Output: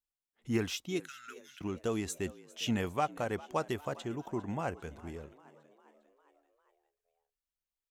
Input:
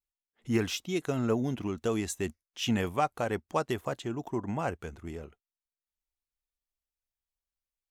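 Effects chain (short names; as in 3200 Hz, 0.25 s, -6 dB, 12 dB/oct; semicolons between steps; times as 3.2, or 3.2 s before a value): 1–1.61 elliptic high-pass 1400 Hz, stop band 40 dB; frequency-shifting echo 0.402 s, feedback 57%, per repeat +69 Hz, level -20 dB; gain -3.5 dB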